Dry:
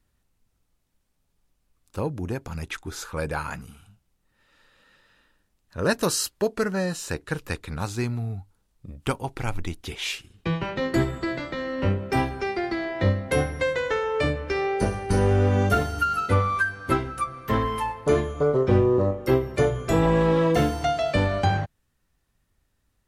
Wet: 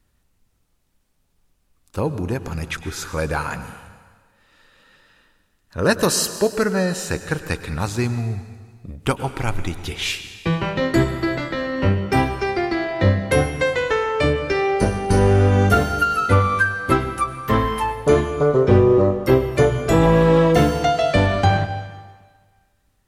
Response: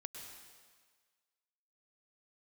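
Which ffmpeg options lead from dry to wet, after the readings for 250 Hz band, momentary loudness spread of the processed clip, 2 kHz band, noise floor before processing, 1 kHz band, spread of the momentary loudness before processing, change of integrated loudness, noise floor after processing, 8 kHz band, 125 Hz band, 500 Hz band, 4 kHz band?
+5.5 dB, 12 LU, +6.0 dB, -72 dBFS, +5.5 dB, 12 LU, +5.5 dB, -65 dBFS, +5.5 dB, +5.5 dB, +5.5 dB, +6.0 dB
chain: -filter_complex "[0:a]asplit=2[a][b];[1:a]atrim=start_sample=2205[c];[b][c]afir=irnorm=-1:irlink=0,volume=0.5dB[d];[a][d]amix=inputs=2:normalize=0,volume=1.5dB"

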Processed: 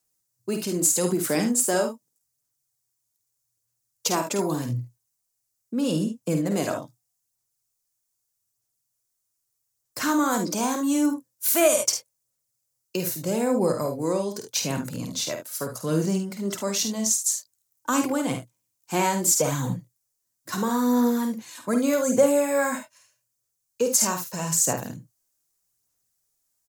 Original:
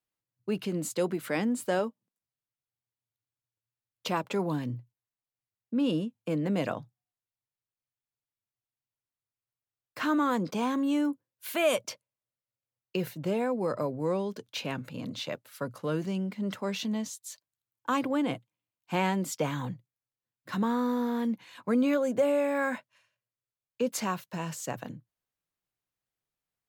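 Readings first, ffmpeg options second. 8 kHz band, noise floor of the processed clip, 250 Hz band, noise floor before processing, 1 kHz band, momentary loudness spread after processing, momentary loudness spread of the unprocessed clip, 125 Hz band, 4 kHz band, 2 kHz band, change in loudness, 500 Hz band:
+19.0 dB, -78 dBFS, +4.5 dB, under -85 dBFS, +4.5 dB, 11 LU, 13 LU, +5.5 dB, +7.5 dB, +3.5 dB, +6.5 dB, +5.5 dB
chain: -filter_complex "[0:a]highshelf=f=4.5k:t=q:w=1.5:g=12.5,aphaser=in_gain=1:out_gain=1:delay=3.3:decay=0.38:speed=0.81:type=sinusoidal,asplit=2[a][b];[b]aecho=0:1:50|73:0.447|0.282[c];[a][c]amix=inputs=2:normalize=0,alimiter=level_in=10.5dB:limit=-1dB:release=50:level=0:latency=1,volume=-7dB"

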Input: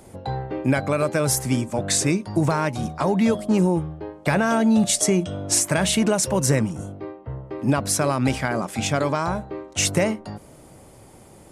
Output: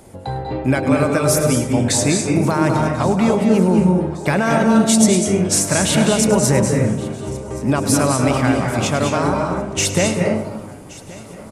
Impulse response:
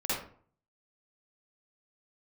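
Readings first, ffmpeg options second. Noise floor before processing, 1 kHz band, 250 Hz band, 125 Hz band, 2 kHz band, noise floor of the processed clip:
-48 dBFS, +5.5 dB, +6.0 dB, +6.0 dB, +4.5 dB, -36 dBFS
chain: -filter_complex "[0:a]aecho=1:1:1124|2248|3372|4496:0.0944|0.05|0.0265|0.0141,asplit=2[a][b];[1:a]atrim=start_sample=2205,asetrate=22932,aresample=44100,adelay=104[c];[b][c]afir=irnorm=-1:irlink=0,volume=-13dB[d];[a][d]amix=inputs=2:normalize=0,volume=2.5dB"

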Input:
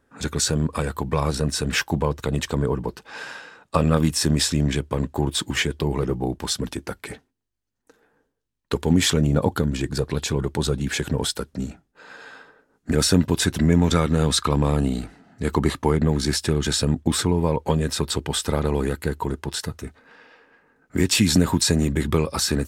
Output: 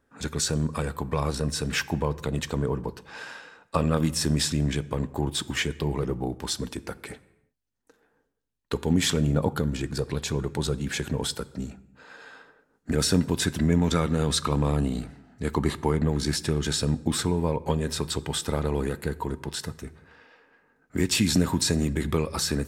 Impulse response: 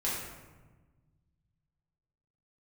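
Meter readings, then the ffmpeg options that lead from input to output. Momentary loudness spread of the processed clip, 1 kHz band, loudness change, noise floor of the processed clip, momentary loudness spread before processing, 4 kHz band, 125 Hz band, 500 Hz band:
13 LU, -4.5 dB, -4.5 dB, -70 dBFS, 13 LU, -4.5 dB, -4.0 dB, -4.5 dB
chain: -filter_complex "[0:a]asplit=2[a][b];[1:a]atrim=start_sample=2205,afade=t=out:st=0.42:d=0.01,atrim=end_sample=18963[c];[b][c]afir=irnorm=-1:irlink=0,volume=-22dB[d];[a][d]amix=inputs=2:normalize=0,volume=-5dB"

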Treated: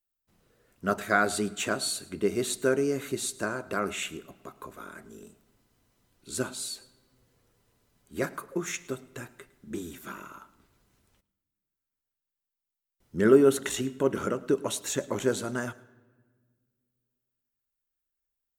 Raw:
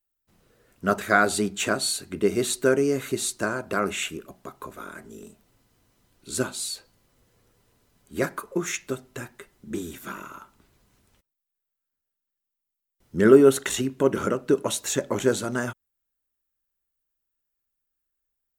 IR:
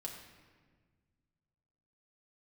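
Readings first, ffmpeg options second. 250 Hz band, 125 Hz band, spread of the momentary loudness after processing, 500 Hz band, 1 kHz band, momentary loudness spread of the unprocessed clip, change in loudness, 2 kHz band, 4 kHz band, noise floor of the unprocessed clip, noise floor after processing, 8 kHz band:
-4.5 dB, -4.5 dB, 19 LU, -4.5 dB, -4.5 dB, 19 LU, -4.5 dB, -4.5 dB, -4.5 dB, -84 dBFS, under -85 dBFS, -4.5 dB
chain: -filter_complex "[0:a]asplit=2[a][b];[1:a]atrim=start_sample=2205,adelay=107[c];[b][c]afir=irnorm=-1:irlink=0,volume=-17.5dB[d];[a][d]amix=inputs=2:normalize=0,volume=-4.5dB"

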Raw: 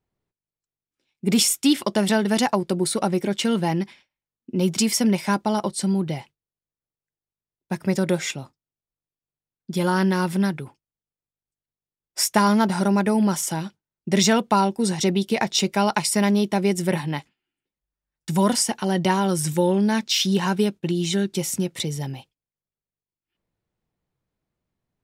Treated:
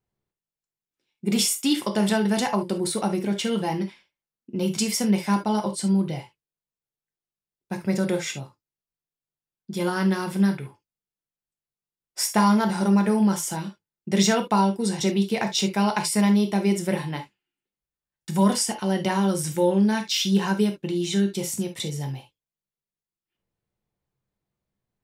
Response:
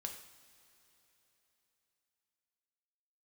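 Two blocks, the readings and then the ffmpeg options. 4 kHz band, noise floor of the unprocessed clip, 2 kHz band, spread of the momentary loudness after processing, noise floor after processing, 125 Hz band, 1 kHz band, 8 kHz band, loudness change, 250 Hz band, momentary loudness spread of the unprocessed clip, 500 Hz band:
-3.0 dB, under -85 dBFS, -3.0 dB, 12 LU, under -85 dBFS, -1.5 dB, -2.5 dB, -3.0 dB, -1.5 dB, -0.5 dB, 11 LU, -2.5 dB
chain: -filter_complex "[1:a]atrim=start_sample=2205,atrim=end_sample=3528[a];[0:a][a]afir=irnorm=-1:irlink=0"

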